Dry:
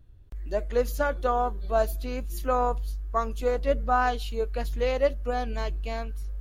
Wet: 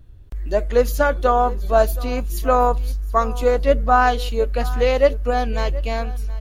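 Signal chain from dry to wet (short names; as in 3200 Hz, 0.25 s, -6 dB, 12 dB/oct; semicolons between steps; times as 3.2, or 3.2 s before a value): echo 0.723 s -19 dB; gain +8.5 dB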